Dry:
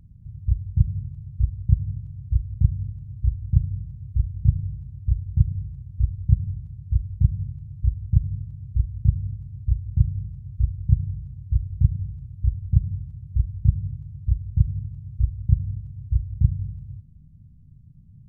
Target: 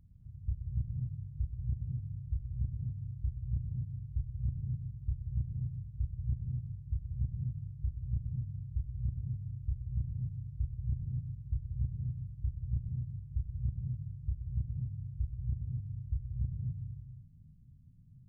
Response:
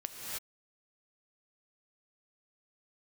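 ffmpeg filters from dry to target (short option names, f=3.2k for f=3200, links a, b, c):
-filter_complex "[0:a]alimiter=limit=-13dB:level=0:latency=1:release=107[a];[1:a]atrim=start_sample=2205,afade=t=out:st=0.32:d=0.01,atrim=end_sample=14553[b];[a][b]afir=irnorm=-1:irlink=0,volume=-8.5dB"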